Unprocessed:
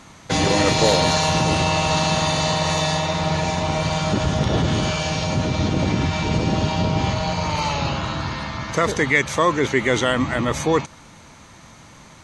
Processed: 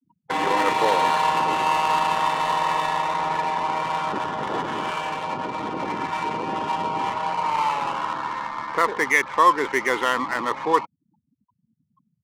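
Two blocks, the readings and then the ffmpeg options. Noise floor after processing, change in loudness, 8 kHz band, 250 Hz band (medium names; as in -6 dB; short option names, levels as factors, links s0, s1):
-75 dBFS, -2.5 dB, -11.5 dB, -10.0 dB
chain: -af "afftfilt=real='re*gte(hypot(re,im),0.0282)':imag='im*gte(hypot(re,im),0.0282)':win_size=1024:overlap=0.75,highpass=440,equalizer=f=620:t=q:w=4:g=-8,equalizer=f=990:t=q:w=4:g=8,equalizer=f=2500:t=q:w=4:g=-3,lowpass=f=3100:w=0.5412,lowpass=f=3100:w=1.3066,adynamicsmooth=sensitivity=3.5:basefreq=1000"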